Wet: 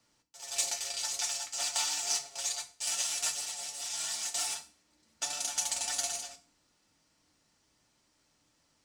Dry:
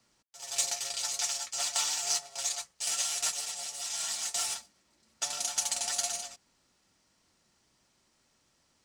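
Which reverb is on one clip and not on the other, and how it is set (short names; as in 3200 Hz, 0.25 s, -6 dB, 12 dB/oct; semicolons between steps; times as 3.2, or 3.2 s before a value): FDN reverb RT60 0.38 s, low-frequency decay 1.6×, high-frequency decay 1×, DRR 7 dB; gain -2 dB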